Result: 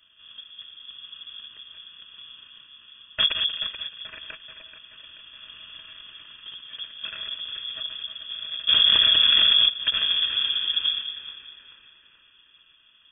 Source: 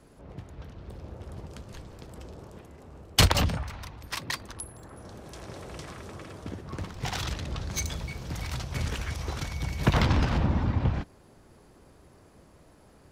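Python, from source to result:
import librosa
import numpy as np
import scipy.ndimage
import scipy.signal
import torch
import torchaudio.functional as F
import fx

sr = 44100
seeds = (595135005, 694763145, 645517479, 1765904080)

y = np.r_[np.sort(x[:len(x) // 16 * 16].reshape(-1, 16), axis=1).ravel(), x[len(x) // 16 * 16:]]
y = scipy.signal.sosfilt(scipy.signal.butter(2, 51.0, 'highpass', fs=sr, output='sos'), y)
y = fx.fixed_phaser(y, sr, hz=1800.0, stages=8)
y = fx.echo_split(y, sr, split_hz=640.0, low_ms=201, high_ms=432, feedback_pct=52, wet_db=-10)
y = fx.freq_invert(y, sr, carrier_hz=3400)
y = fx.env_flatten(y, sr, amount_pct=100, at=(8.67, 9.68), fade=0.02)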